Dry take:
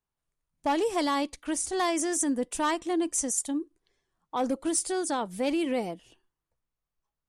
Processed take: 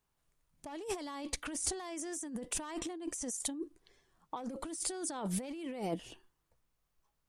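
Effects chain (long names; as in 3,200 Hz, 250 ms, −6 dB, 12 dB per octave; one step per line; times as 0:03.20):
compressor whose output falls as the input rises −38 dBFS, ratio −1
level −2 dB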